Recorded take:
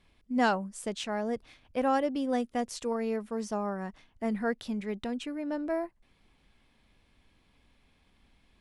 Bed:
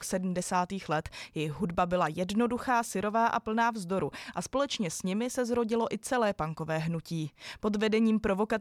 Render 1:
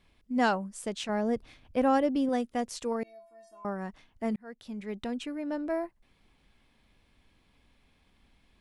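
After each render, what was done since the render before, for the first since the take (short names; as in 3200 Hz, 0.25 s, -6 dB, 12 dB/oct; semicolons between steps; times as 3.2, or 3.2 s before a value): 1.09–2.29 low shelf 410 Hz +6 dB; 3.03–3.65 metallic resonator 330 Hz, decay 0.58 s, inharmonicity 0.008; 4.36–5.07 fade in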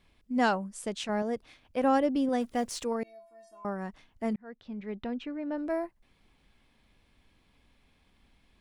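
1.22–1.84 low shelf 250 Hz -9.5 dB; 2.41–2.84 G.711 law mismatch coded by mu; 4.33–5.58 air absorption 220 m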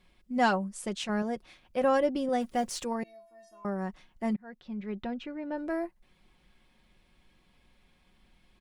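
comb 5.5 ms, depth 48%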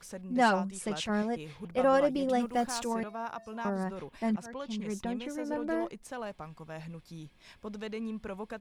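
add bed -11.5 dB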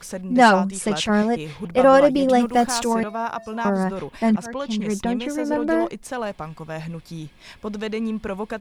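gain +11.5 dB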